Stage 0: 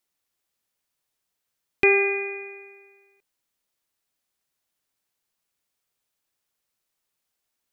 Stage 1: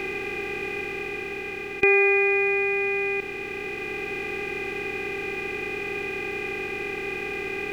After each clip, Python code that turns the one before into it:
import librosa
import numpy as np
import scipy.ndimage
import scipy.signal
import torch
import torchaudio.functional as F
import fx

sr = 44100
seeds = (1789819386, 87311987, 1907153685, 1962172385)

y = fx.bin_compress(x, sr, power=0.2)
y = fx.rider(y, sr, range_db=3, speed_s=2.0)
y = y * 10.0 ** (-1.5 / 20.0)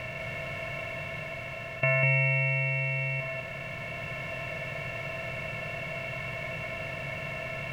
y = x * np.sin(2.0 * np.pi * 260.0 * np.arange(len(x)) / sr)
y = y + 10.0 ** (-3.0 / 20.0) * np.pad(y, (int(199 * sr / 1000.0), 0))[:len(y)]
y = y * 10.0 ** (-4.0 / 20.0)